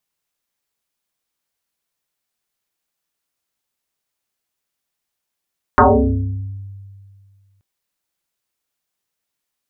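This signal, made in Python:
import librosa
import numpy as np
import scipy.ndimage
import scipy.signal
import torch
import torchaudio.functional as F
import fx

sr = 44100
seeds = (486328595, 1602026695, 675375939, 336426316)

y = fx.fm2(sr, length_s=1.83, level_db=-5, carrier_hz=98.5, ratio=1.69, index=8.8, index_s=1.16, decay_s=2.12, shape='exponential')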